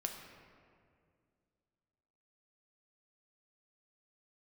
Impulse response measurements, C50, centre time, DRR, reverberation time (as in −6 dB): 5.0 dB, 50 ms, 2.5 dB, 2.2 s